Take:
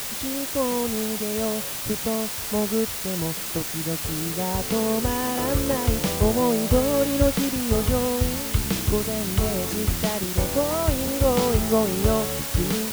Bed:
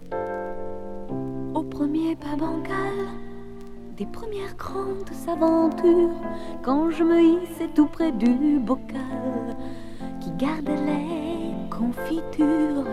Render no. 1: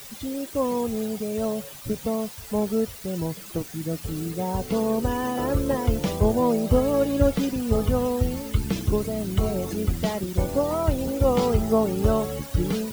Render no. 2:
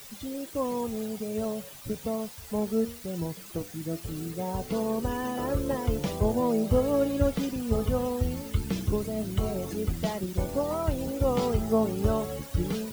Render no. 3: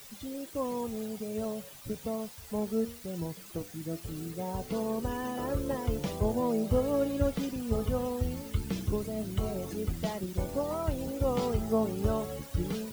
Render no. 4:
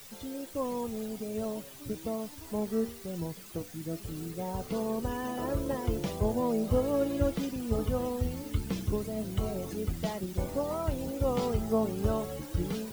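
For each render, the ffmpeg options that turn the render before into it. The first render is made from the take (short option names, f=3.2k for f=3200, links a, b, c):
-af "afftdn=nr=13:nf=-31"
-af "flanger=delay=4.3:depth=9.6:regen=81:speed=0.19:shape=triangular"
-af "volume=-3.5dB"
-filter_complex "[1:a]volume=-26dB[a];[0:a][a]amix=inputs=2:normalize=0"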